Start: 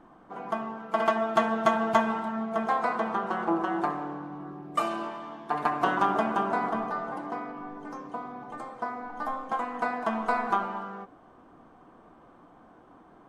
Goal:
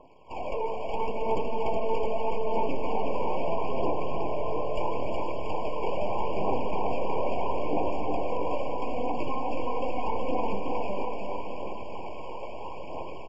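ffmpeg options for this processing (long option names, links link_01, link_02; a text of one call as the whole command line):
ffmpeg -i in.wav -filter_complex "[0:a]lowshelf=frequency=500:gain=6.5,aresample=16000,aeval=exprs='abs(val(0))':channel_layout=same,aresample=44100,dynaudnorm=framelen=240:gausssize=3:maxgain=16dB,acrossover=split=1000[link_01][link_02];[link_01]alimiter=limit=-11dB:level=0:latency=1:release=321[link_03];[link_02]acompressor=threshold=-38dB:ratio=12[link_04];[link_03][link_04]amix=inputs=2:normalize=0,bass=frequency=250:gain=-12,treble=frequency=4000:gain=-4,asoftclip=type=tanh:threshold=-25.5dB,aphaser=in_gain=1:out_gain=1:delay=2.2:decay=0.49:speed=0.77:type=triangular,aecho=1:1:370|684.5|951.8|1179|1372:0.631|0.398|0.251|0.158|0.1,afftfilt=real='re*eq(mod(floor(b*sr/1024/1100),2),0)':imag='im*eq(mod(floor(b*sr/1024/1100),2),0)':win_size=1024:overlap=0.75" out.wav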